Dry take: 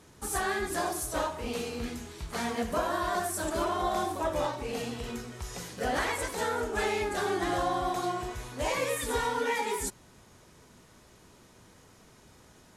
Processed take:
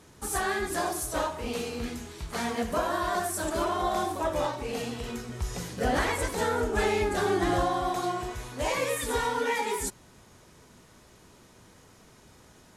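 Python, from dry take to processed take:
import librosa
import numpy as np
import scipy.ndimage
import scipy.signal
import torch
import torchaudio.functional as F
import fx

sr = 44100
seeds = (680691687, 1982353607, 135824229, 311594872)

y = fx.low_shelf(x, sr, hz=330.0, db=7.0, at=(5.29, 7.66))
y = F.gain(torch.from_numpy(y), 1.5).numpy()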